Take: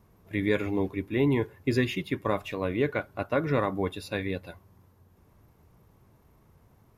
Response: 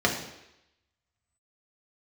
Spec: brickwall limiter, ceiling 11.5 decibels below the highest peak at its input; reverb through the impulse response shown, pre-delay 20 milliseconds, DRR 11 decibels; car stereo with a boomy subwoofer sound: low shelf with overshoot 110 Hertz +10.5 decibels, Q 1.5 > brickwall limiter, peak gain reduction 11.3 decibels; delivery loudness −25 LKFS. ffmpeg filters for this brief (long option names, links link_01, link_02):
-filter_complex "[0:a]alimiter=limit=-23dB:level=0:latency=1,asplit=2[link_01][link_02];[1:a]atrim=start_sample=2205,adelay=20[link_03];[link_02][link_03]afir=irnorm=-1:irlink=0,volume=-25.5dB[link_04];[link_01][link_04]amix=inputs=2:normalize=0,lowshelf=frequency=110:width_type=q:width=1.5:gain=10.5,volume=15dB,alimiter=limit=-16dB:level=0:latency=1"